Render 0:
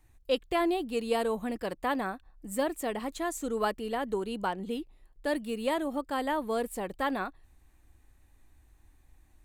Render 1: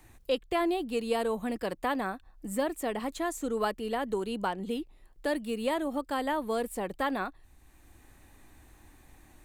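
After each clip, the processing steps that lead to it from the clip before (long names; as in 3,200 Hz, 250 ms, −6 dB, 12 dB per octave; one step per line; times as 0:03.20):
multiband upward and downward compressor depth 40%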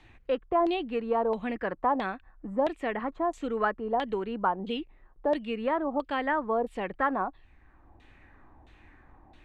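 auto-filter low-pass saw down 1.5 Hz 750–3,600 Hz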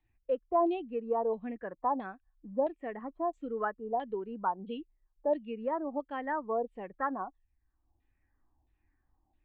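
every bin expanded away from the loudest bin 1.5 to 1
level −5 dB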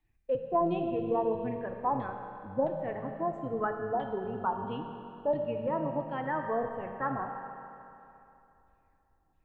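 sub-octave generator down 1 octave, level −4 dB
convolution reverb RT60 2.9 s, pre-delay 5 ms, DRR 3 dB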